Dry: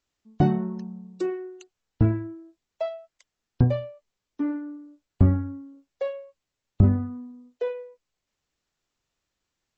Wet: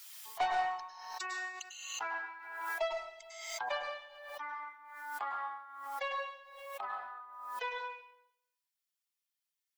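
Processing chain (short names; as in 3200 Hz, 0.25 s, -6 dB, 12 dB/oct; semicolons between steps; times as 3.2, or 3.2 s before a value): per-bin expansion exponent 1.5; elliptic high-pass 790 Hz, stop band 80 dB; soft clip -35 dBFS, distortion -10 dB; plate-style reverb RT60 0.78 s, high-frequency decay 0.95×, pre-delay 90 ms, DRR 1 dB; backwards sustainer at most 47 dB/s; gain +8 dB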